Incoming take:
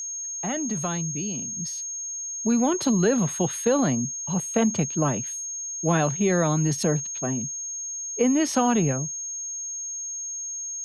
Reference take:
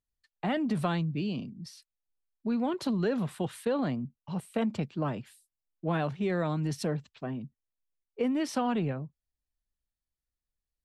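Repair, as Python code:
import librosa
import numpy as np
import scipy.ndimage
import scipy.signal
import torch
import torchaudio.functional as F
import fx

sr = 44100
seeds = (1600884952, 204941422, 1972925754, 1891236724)

y = fx.notch(x, sr, hz=6500.0, q=30.0)
y = fx.gain(y, sr, db=fx.steps((0.0, 0.0), (1.57, -7.5)))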